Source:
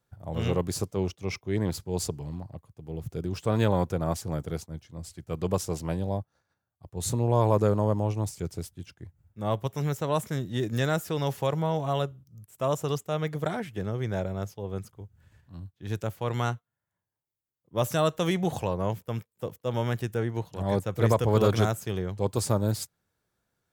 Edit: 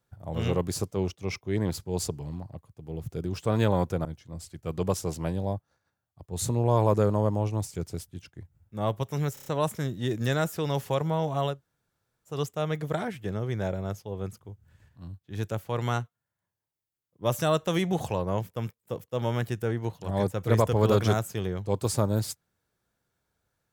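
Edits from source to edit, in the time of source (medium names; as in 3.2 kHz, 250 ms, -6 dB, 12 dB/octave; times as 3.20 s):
4.05–4.69 s: delete
9.98 s: stutter 0.03 s, 5 plays
12.06–12.85 s: room tone, crossfade 0.16 s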